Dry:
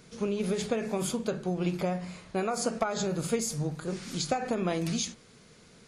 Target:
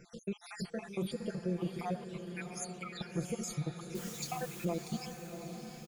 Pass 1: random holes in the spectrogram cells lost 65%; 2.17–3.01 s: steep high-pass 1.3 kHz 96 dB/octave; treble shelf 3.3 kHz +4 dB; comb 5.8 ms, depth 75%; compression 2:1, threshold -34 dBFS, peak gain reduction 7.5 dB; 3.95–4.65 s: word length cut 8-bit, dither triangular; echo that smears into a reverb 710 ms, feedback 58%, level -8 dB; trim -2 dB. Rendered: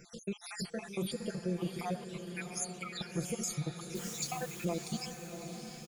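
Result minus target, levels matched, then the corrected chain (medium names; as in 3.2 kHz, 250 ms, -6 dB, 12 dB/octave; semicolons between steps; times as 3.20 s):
8 kHz band +4.0 dB
random holes in the spectrogram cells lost 65%; 2.17–3.01 s: steep high-pass 1.3 kHz 96 dB/octave; treble shelf 3.3 kHz -4.5 dB; comb 5.8 ms, depth 75%; compression 2:1, threshold -34 dBFS, peak gain reduction 7 dB; 3.95–4.65 s: word length cut 8-bit, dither triangular; echo that smears into a reverb 710 ms, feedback 58%, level -8 dB; trim -2 dB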